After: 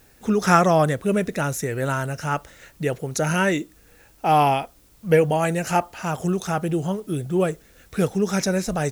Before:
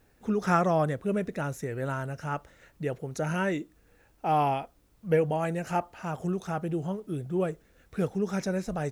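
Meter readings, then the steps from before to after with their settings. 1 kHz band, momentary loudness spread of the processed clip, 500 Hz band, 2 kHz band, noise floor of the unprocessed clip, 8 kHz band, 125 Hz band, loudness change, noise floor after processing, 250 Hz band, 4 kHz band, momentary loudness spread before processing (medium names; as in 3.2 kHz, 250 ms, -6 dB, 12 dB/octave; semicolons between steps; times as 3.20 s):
+8.0 dB, 10 LU, +7.5 dB, +9.5 dB, -64 dBFS, +15.5 dB, +7.0 dB, +7.5 dB, -54 dBFS, +7.0 dB, +13.0 dB, 10 LU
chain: treble shelf 2.8 kHz +9.5 dB; trim +7 dB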